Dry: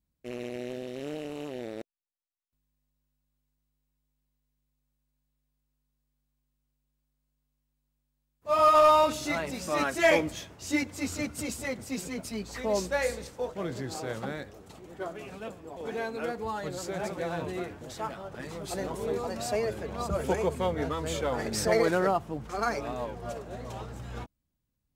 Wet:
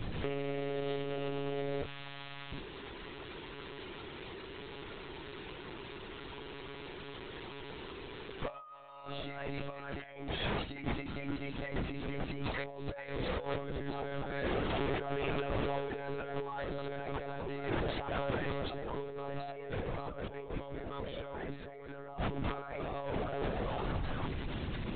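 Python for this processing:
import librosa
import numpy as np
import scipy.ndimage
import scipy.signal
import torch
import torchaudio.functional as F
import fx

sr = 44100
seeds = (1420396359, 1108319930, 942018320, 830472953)

y = x + 0.5 * 10.0 ** (-36.5 / 20.0) * np.sign(x)
y = fx.hum_notches(y, sr, base_hz=50, count=6)
y = fx.over_compress(y, sr, threshold_db=-39.0, ratio=-1.0)
y = fx.lpc_monotone(y, sr, seeds[0], pitch_hz=140.0, order=16)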